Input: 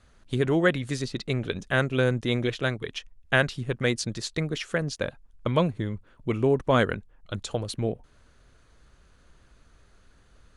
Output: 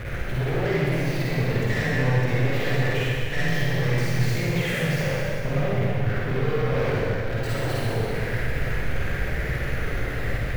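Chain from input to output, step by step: pitch shift switched off and on +2 st, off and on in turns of 476 ms; peak limiter -18.5 dBFS, peak gain reduction 9.5 dB; power-law waveshaper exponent 0.35; compression, threshold -29 dBFS, peak gain reduction 8 dB; graphic EQ 125/250/500/1000/2000/4000/8000 Hz +9/-5/+8/-10/+12/-10/-11 dB; saturation -29 dBFS, distortion -10 dB; treble shelf 5.5 kHz -4.5 dB; reverberation RT60 2.6 s, pre-delay 43 ms, DRR -8 dB

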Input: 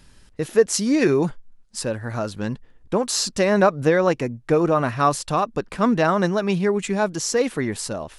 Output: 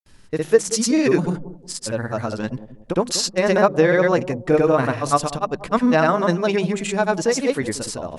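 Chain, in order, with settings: hum notches 50/100/150/200 Hz; granulator, pitch spread up and down by 0 st; on a send: bucket-brigade echo 183 ms, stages 1024, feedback 32%, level -14 dB; on the sum: trim +2.5 dB

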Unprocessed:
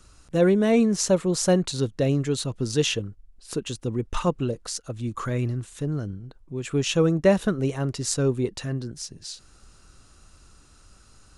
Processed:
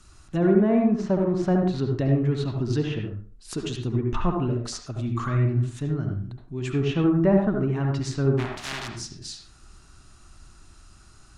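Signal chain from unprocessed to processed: 8.37–8.87 s: spectral contrast reduction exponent 0.11; peaking EQ 500 Hz -14.5 dB 0.29 oct; low-pass that closes with the level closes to 1.2 kHz, closed at -20 dBFS; reverberation RT60 0.40 s, pre-delay 63 ms, DRR 1.5 dB

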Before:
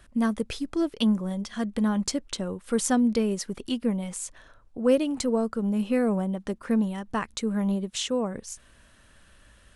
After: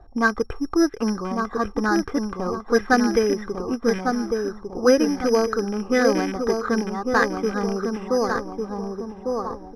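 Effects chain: rattle on loud lows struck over -30 dBFS, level -31 dBFS; distance through air 150 m; comb 2.5 ms, depth 57%; on a send: filtered feedback delay 1151 ms, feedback 46%, low-pass 1.3 kHz, level -4.5 dB; on the sum: careless resampling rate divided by 8×, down filtered, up zero stuff; touch-sensitive low-pass 750–1700 Hz up, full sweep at -13 dBFS; trim +4.5 dB

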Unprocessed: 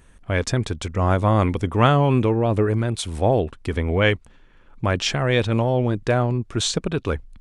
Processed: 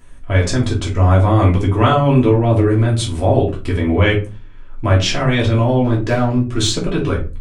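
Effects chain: in parallel at +2.5 dB: peak limiter -13.5 dBFS, peak gain reduction 10 dB; 5.84–6.72 s: on the sum: overload inside the chain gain 8 dB; reverberation RT60 0.30 s, pre-delay 3 ms, DRR -4 dB; trim -7.5 dB

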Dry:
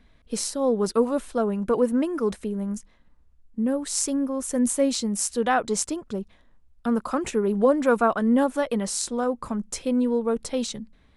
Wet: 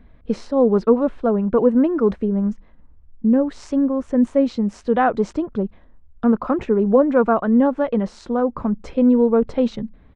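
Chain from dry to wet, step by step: tempo 1.1×; gain riding within 4 dB 2 s; tape spacing loss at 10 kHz 43 dB; trim +7.5 dB

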